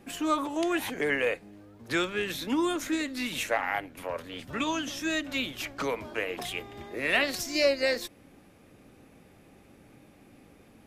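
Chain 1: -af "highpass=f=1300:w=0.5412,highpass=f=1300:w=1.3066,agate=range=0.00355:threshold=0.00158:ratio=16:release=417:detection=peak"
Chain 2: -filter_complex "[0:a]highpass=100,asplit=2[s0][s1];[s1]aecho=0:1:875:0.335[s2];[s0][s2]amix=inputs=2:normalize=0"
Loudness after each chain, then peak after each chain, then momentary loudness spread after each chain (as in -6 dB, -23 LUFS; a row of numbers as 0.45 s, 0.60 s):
-33.0 LUFS, -30.0 LUFS; -13.0 dBFS, -12.0 dBFS; 12 LU, 10 LU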